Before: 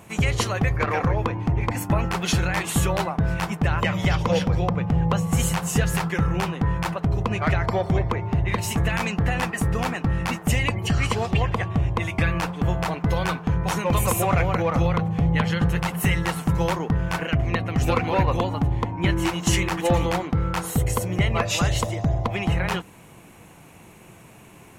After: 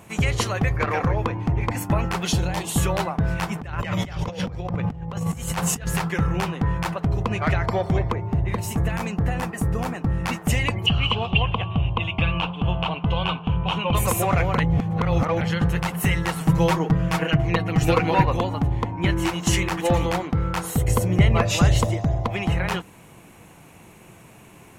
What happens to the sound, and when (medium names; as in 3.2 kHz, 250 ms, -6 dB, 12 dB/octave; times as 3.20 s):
2.28–2.78 s: high-order bell 1.7 kHz -9 dB 1.3 oct
3.55–5.87 s: compressor with a negative ratio -26 dBFS, ratio -0.5
8.13–10.24 s: peaking EQ 3 kHz -7.5 dB 2.7 oct
10.86–13.95 s: FFT filter 180 Hz 0 dB, 340 Hz -5 dB, 1.1 kHz +2 dB, 1.9 kHz -13 dB, 2.9 kHz +13 dB, 4.8 kHz -14 dB, 7.2 kHz -20 dB, 13 kHz -25 dB
14.58–15.41 s: reverse
16.40–18.25 s: comb 6.3 ms, depth 93%
20.88–21.97 s: bass shelf 490 Hz +6 dB